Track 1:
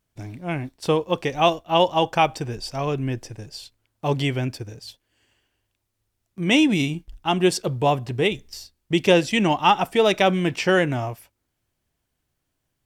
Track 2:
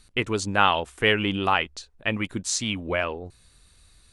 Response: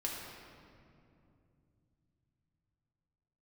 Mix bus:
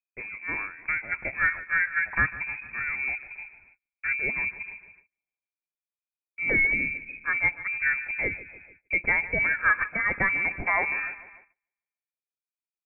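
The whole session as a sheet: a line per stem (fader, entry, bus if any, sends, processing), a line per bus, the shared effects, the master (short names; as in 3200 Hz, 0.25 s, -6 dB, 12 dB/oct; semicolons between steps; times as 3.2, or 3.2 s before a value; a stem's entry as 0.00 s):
-4.0 dB, 0.00 s, no send, echo send -16.5 dB, bell 490 Hz -15 dB 0.36 oct
-14.5 dB, 0.00 s, no send, no echo send, auto duck -10 dB, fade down 0.95 s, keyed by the first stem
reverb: off
echo: feedback echo 0.148 s, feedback 56%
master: gate -51 dBFS, range -30 dB; inverted band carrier 2500 Hz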